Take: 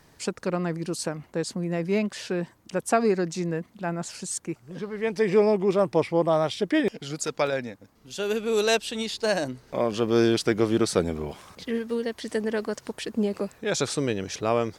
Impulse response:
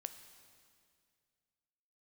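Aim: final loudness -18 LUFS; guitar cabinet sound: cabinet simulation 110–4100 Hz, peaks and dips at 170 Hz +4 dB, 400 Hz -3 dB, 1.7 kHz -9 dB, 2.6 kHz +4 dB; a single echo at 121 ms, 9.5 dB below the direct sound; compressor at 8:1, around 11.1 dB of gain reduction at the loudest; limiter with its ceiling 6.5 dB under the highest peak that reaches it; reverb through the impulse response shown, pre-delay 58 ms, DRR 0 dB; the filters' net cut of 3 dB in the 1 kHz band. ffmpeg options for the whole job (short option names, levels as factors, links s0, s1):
-filter_complex "[0:a]equalizer=f=1000:t=o:g=-3.5,acompressor=threshold=0.0398:ratio=8,alimiter=limit=0.0668:level=0:latency=1,aecho=1:1:121:0.335,asplit=2[s0][s1];[1:a]atrim=start_sample=2205,adelay=58[s2];[s1][s2]afir=irnorm=-1:irlink=0,volume=1.5[s3];[s0][s3]amix=inputs=2:normalize=0,highpass=110,equalizer=f=170:t=q:w=4:g=4,equalizer=f=400:t=q:w=4:g=-3,equalizer=f=1700:t=q:w=4:g=-9,equalizer=f=2600:t=q:w=4:g=4,lowpass=f=4100:w=0.5412,lowpass=f=4100:w=1.3066,volume=5.01"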